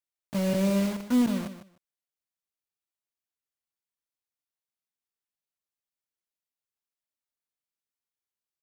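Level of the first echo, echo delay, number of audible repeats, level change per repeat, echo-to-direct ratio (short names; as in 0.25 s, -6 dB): -11.5 dB, 0.152 s, 2, -15.5 dB, -11.5 dB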